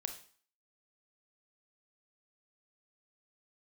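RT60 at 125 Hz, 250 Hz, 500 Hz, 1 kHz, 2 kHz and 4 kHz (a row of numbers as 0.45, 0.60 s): 0.40, 0.45, 0.40, 0.50, 0.45, 0.45 s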